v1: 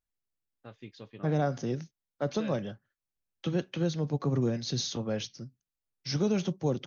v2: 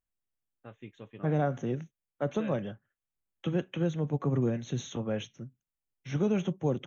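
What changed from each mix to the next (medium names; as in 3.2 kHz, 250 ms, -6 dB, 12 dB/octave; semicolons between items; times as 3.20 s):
master: add Butterworth band-stop 4.8 kHz, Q 1.3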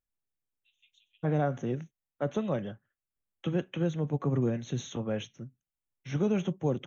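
first voice: add steep high-pass 2.8 kHz 48 dB/octave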